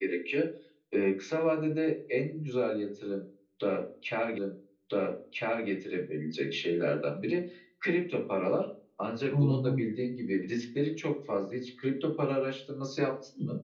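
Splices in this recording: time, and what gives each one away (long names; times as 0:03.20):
0:04.38: the same again, the last 1.3 s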